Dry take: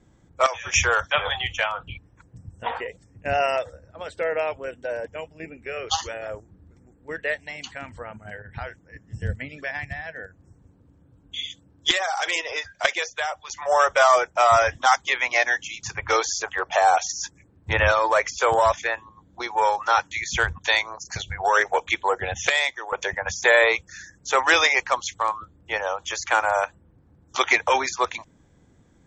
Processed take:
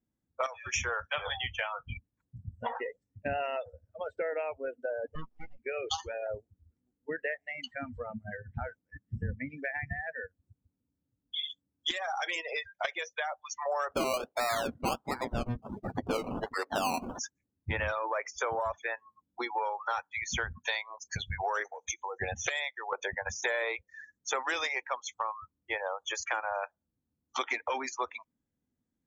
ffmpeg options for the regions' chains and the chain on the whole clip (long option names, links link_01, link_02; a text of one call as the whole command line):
ffmpeg -i in.wav -filter_complex "[0:a]asettb=1/sr,asplit=3[link_01][link_02][link_03];[link_01]atrim=end=5.154[link_04];[link_02]atrim=start=5.15:end=5.59,asetpts=PTS-STARTPTS,afade=type=in:duration=0.004:curve=qsin,afade=type=out:start_time=0.436:duration=0.004:curve=qsin,highpass=51,bandreject=frequency=50:width_type=h:width=6,bandreject=frequency=100:width_type=h:width=6,bandreject=frequency=150:width_type=h:width=6,bandreject=frequency=200:width_type=h:width=6,bandreject=frequency=250:width_type=h:width=6,bandreject=frequency=300:width_type=h:width=6,aeval=exprs='abs(val(0))':channel_layout=same[link_05];[link_03]atrim=start=5.586[link_06];[link_04][link_05]acrossfade=duration=0.004:curve1=hsin:curve2=qsin[link_07];[link_07][link_06]acrossfade=duration=0.004:curve1=qsin:curve2=hsin,asettb=1/sr,asplit=3[link_08][link_09][link_10];[link_08]atrim=end=13.914[link_11];[link_09]atrim=start=13.91:end=17.19,asetpts=PTS-STARTPTS,afade=type=in:duration=0.004:curve=qsin,afade=type=out:start_time=3.276:duration=0.004:curve=qsin,highpass=frequency=270:poles=1,lowshelf=frequency=490:gain=10,acrusher=samples=20:mix=1:aa=0.000001:lfo=1:lforange=12:lforate=1.4[link_12];[link_10]atrim=start=17.186[link_13];[link_11][link_12]acrossfade=duration=0.004:curve1=hsin:curve2=qsin[link_14];[link_14][link_13]acrossfade=duration=0.004:curve1=qsin:curve2=hsin,asettb=1/sr,asplit=3[link_15][link_16][link_17];[link_15]atrim=end=21.644[link_18];[link_16]atrim=start=21.64:end=22.2,asetpts=PTS-STARTPTS,afade=type=in:duration=0.004:curve=qsin,afade=type=out:start_time=0.556:duration=0.004:curve=qsin,agate=range=-33dB:threshold=-44dB:ratio=3:release=100:detection=peak,acompressor=threshold=-30dB:ratio=20:attack=3.2:release=140:knee=1:detection=peak,lowpass=frequency=6200:width_type=q:width=12[link_19];[link_17]atrim=start=22.196[link_20];[link_18][link_19]acrossfade=duration=0.004:curve1=hsin:curve2=qsin[link_21];[link_21][link_20]acrossfade=duration=0.004:curve1=qsin:curve2=hsin,afftdn=noise_reduction=30:noise_floor=-30,equalizer=frequency=240:width_type=o:width=0.46:gain=10,acompressor=threshold=-32dB:ratio=4" out.wav